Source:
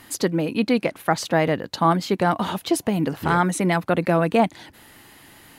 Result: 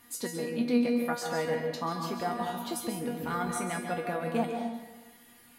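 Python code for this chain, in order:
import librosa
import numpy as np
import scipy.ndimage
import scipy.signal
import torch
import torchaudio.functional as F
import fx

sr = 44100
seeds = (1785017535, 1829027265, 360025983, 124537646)

y = fx.high_shelf(x, sr, hz=11000.0, db=11.0)
y = fx.comb_fb(y, sr, f0_hz=240.0, decay_s=0.32, harmonics='all', damping=0.0, mix_pct=90)
y = fx.rev_plate(y, sr, seeds[0], rt60_s=1.1, hf_ratio=0.55, predelay_ms=120, drr_db=3.5)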